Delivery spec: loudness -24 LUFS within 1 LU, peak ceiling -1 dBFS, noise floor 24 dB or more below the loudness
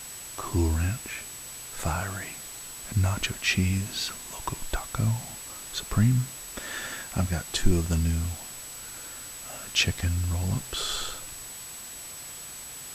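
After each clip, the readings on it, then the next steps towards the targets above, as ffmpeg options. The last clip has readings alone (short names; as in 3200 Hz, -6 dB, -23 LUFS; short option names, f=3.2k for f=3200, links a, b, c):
steady tone 7900 Hz; tone level -41 dBFS; noise floor -41 dBFS; noise floor target -54 dBFS; loudness -30.0 LUFS; peak -7.0 dBFS; loudness target -24.0 LUFS
-> -af "bandreject=f=7.9k:w=30"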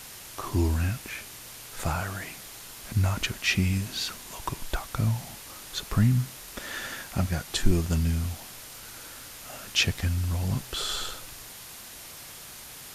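steady tone none; noise floor -44 dBFS; noise floor target -53 dBFS
-> -af "afftdn=nr=9:nf=-44"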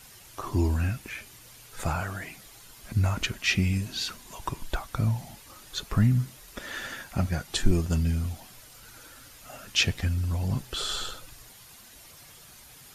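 noise floor -51 dBFS; noise floor target -53 dBFS
-> -af "afftdn=nr=6:nf=-51"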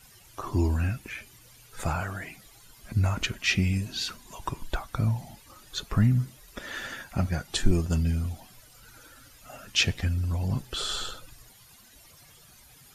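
noise floor -55 dBFS; loudness -29.0 LUFS; peak -7.5 dBFS; loudness target -24.0 LUFS
-> -af "volume=5dB"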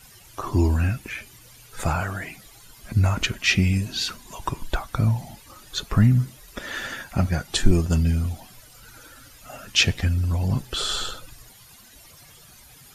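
loudness -24.0 LUFS; peak -2.5 dBFS; noise floor -50 dBFS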